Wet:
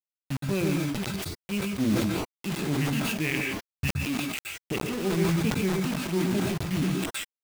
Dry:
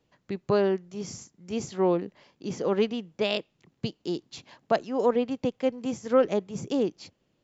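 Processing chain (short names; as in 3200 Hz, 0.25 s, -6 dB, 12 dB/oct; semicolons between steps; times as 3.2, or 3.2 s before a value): repeated pitch sweeps -9.5 st, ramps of 0.488 s; notches 60/120/180/240/300/360/420/480/540 Hz; spectral noise reduction 8 dB; EQ curve 220 Hz 0 dB, 340 Hz -7 dB, 960 Hz -16 dB, 1500 Hz -12 dB, 2600 Hz +7 dB, 5600 Hz -24 dB; in parallel at +1 dB: compressor 10:1, threshold -39 dBFS, peak gain reduction 16 dB; on the sum: high shelf 6600 Hz -4 dB; bit-crush 6-bit; on a send at -3.5 dB: reverb, pre-delay 0.119 s; on the sum: sustainer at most 23 dB/s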